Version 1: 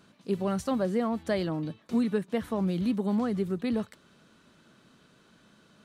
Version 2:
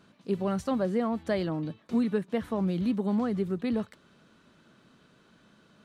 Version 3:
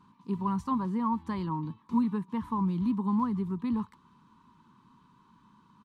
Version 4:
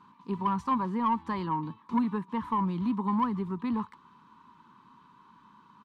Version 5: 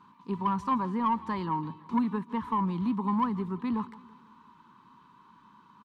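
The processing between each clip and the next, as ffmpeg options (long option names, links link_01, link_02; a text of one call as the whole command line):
ffmpeg -i in.wav -af "highshelf=frequency=5700:gain=-7" out.wav
ffmpeg -i in.wav -af "firequalizer=gain_entry='entry(240,0);entry(650,-26);entry(950,14);entry(1400,-9)':delay=0.05:min_phase=1" out.wav
ffmpeg -i in.wav -filter_complex "[0:a]asplit=2[link_01][link_02];[link_02]highpass=frequency=720:poles=1,volume=13dB,asoftclip=type=tanh:threshold=-15.5dB[link_03];[link_01][link_03]amix=inputs=2:normalize=0,lowpass=frequency=2200:poles=1,volume=-6dB" out.wav
ffmpeg -i in.wav -af "aecho=1:1:167|334|501|668:0.1|0.052|0.027|0.0141" out.wav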